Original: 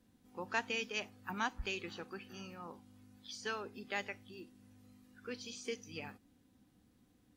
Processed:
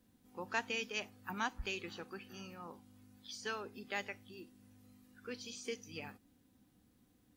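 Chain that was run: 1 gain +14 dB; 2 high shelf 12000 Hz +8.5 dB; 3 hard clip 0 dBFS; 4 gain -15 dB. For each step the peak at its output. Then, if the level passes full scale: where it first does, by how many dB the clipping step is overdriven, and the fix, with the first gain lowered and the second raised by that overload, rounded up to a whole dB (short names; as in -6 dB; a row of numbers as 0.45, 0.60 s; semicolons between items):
-6.0, -6.0, -6.0, -21.0 dBFS; no overload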